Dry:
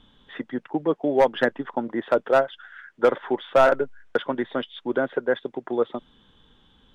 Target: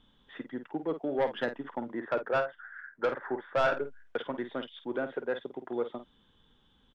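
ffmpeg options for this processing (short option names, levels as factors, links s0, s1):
-filter_complex "[0:a]asettb=1/sr,asplit=3[s0][s1][s2];[s0]atrim=end=1.994[s3];[s1]atrim=start=1.99:end=3.74,asetpts=PTS-STARTPTS,afade=t=in:d=0.004:c=qsin,afade=t=out:st=1.746:d=0.004:c=qsin,highshelf=f=2300:t=q:w=3:g=-10[s4];[s2]atrim=start=3.736[s5];[s3][s4]acrossfade=d=0.004:c1=hsin:c2=qsin[s6];[s6][s5]acrossfade=d=0.004:c1=qsin:c2=hsin,asoftclip=type=tanh:threshold=0.237,asplit=2[s7][s8];[s8]adelay=50,volume=0.316[s9];[s7][s9]amix=inputs=2:normalize=0,volume=0.376"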